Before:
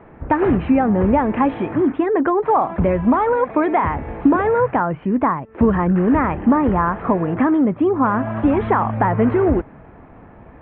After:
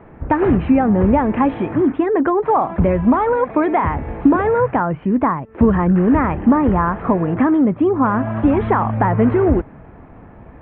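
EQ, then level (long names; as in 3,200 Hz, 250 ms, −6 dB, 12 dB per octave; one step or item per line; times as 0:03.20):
low-shelf EQ 240 Hz +4 dB
0.0 dB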